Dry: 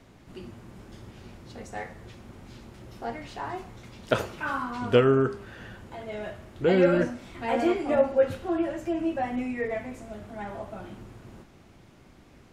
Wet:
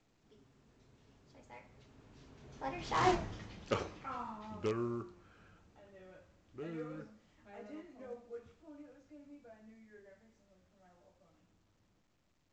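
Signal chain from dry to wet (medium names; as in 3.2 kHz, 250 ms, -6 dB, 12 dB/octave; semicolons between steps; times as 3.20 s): Doppler pass-by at 3.09 s, 46 m/s, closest 3.4 m; in parallel at -7.5 dB: integer overflow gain 35 dB; on the sum: trim +6.5 dB; µ-law 128 kbps 16 kHz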